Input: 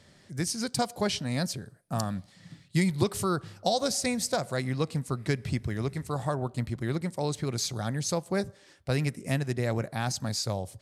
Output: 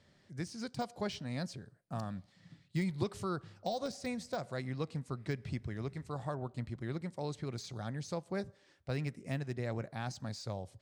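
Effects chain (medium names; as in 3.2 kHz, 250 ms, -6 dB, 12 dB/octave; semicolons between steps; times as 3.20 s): distance through air 66 m; de-esser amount 85%; trim -8.5 dB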